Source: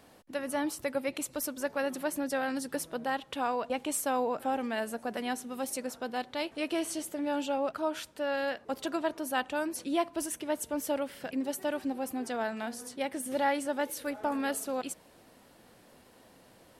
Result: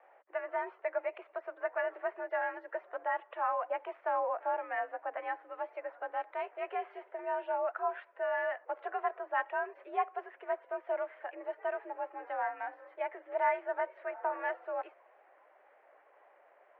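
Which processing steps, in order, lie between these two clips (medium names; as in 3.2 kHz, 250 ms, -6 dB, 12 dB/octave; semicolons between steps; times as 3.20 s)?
coarse spectral quantiser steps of 15 dB; mistuned SSB +62 Hz 470–2100 Hz; vibrato 1.8 Hz 19 cents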